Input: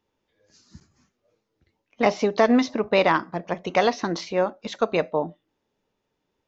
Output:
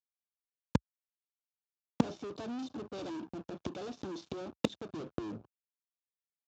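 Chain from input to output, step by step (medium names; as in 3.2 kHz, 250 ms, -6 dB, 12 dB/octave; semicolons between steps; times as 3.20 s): tape stop on the ending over 1.69 s; small resonant body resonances 310/3600 Hz, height 17 dB, ringing for 35 ms; fuzz box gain 26 dB, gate -34 dBFS; dynamic bell 140 Hz, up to +6 dB, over -32 dBFS, Q 0.73; level rider gain up to 12 dB; peaking EQ 2 kHz -11 dB 0.35 oct; inverted gate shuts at -8 dBFS, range -42 dB; resampled via 16 kHz; saturation -23 dBFS, distortion -4 dB; high-pass 62 Hz 24 dB/octave; trim +8.5 dB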